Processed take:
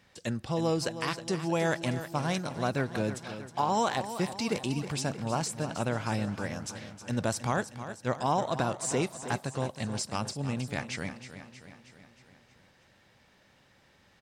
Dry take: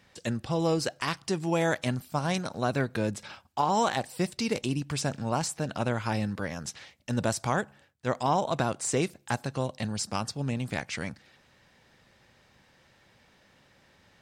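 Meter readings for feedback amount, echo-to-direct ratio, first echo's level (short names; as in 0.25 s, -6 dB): 57%, -10.0 dB, -11.5 dB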